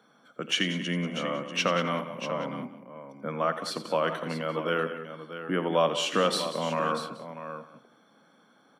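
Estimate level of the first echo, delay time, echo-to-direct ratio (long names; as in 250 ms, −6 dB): −12.5 dB, 86 ms, −7.0 dB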